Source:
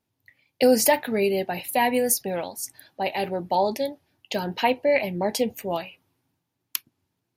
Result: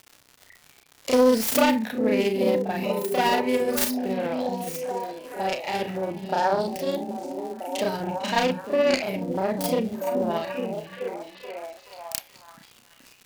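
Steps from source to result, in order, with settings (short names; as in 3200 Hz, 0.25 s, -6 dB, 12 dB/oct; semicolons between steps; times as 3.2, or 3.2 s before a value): self-modulated delay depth 0.27 ms; delay with a stepping band-pass 0.238 s, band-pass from 200 Hz, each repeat 0.7 oct, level -0.5 dB; crackle 240/s -35 dBFS; granular stretch 1.8×, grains 0.142 s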